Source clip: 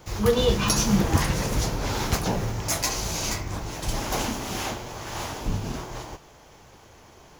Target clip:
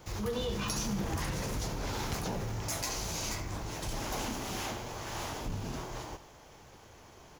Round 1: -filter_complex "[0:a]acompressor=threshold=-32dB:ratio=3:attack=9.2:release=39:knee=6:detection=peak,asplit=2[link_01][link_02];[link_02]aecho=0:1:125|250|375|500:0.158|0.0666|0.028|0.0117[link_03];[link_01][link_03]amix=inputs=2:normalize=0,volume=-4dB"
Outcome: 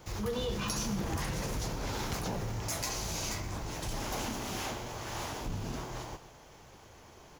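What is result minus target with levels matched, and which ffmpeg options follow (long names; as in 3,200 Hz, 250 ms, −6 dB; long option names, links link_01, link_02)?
echo 52 ms late
-filter_complex "[0:a]acompressor=threshold=-32dB:ratio=3:attack=9.2:release=39:knee=6:detection=peak,asplit=2[link_01][link_02];[link_02]aecho=0:1:73|146|219|292:0.158|0.0666|0.028|0.0117[link_03];[link_01][link_03]amix=inputs=2:normalize=0,volume=-4dB"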